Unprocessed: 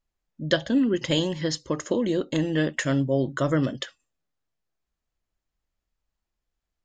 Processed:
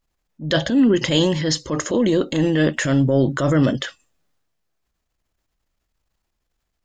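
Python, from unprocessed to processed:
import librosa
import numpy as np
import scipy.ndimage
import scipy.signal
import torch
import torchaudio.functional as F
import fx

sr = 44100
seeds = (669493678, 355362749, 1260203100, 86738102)

y = fx.transient(x, sr, attack_db=-8, sustain_db=5)
y = y * librosa.db_to_amplitude(7.5)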